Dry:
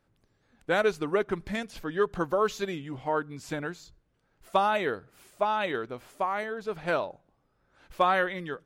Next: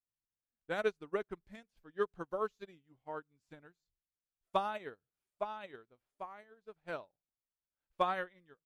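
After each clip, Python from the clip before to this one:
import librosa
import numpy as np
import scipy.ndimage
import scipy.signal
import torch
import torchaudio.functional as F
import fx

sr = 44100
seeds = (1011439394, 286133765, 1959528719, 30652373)

y = fx.low_shelf(x, sr, hz=83.0, db=6.5)
y = fx.upward_expand(y, sr, threshold_db=-41.0, expansion=2.5)
y = F.gain(torch.from_numpy(y), -6.0).numpy()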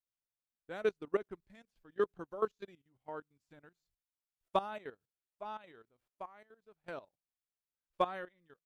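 y = fx.dynamic_eq(x, sr, hz=310.0, q=0.79, threshold_db=-45.0, ratio=4.0, max_db=4)
y = fx.level_steps(y, sr, step_db=15)
y = F.gain(torch.from_numpy(y), 3.0).numpy()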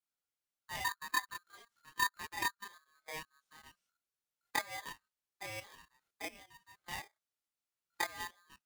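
y = fx.env_lowpass_down(x, sr, base_hz=370.0, full_db=-29.5)
y = fx.chorus_voices(y, sr, voices=2, hz=0.24, base_ms=26, depth_ms=4.3, mix_pct=55)
y = y * np.sign(np.sin(2.0 * np.pi * 1400.0 * np.arange(len(y)) / sr))
y = F.gain(torch.from_numpy(y), 4.0).numpy()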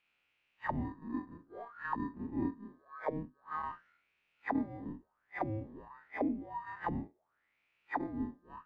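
y = fx.spec_blur(x, sr, span_ms=90.0)
y = fx.envelope_lowpass(y, sr, base_hz=260.0, top_hz=2600.0, q=6.2, full_db=-48.0, direction='down')
y = F.gain(torch.from_numpy(y), 15.0).numpy()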